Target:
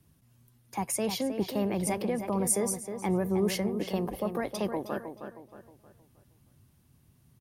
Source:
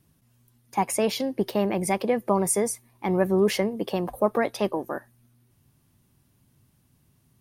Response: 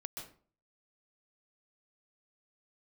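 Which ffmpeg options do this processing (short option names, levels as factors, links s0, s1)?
-filter_complex "[0:a]equalizer=f=77:w=0.93:g=4,acrossover=split=180|5200[s0][s1][s2];[s1]alimiter=limit=0.0891:level=0:latency=1:release=301[s3];[s0][s3][s2]amix=inputs=3:normalize=0,asplit=2[s4][s5];[s5]adelay=314,lowpass=f=3200:p=1,volume=0.398,asplit=2[s6][s7];[s7]adelay=314,lowpass=f=3200:p=1,volume=0.4,asplit=2[s8][s9];[s9]adelay=314,lowpass=f=3200:p=1,volume=0.4,asplit=2[s10][s11];[s11]adelay=314,lowpass=f=3200:p=1,volume=0.4,asplit=2[s12][s13];[s13]adelay=314,lowpass=f=3200:p=1,volume=0.4[s14];[s4][s6][s8][s10][s12][s14]amix=inputs=6:normalize=0,volume=0.841"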